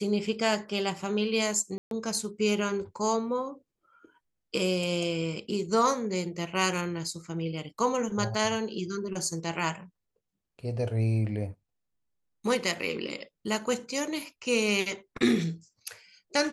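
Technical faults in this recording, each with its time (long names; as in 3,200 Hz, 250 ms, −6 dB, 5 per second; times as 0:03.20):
0:01.78–0:01.91: drop-out 132 ms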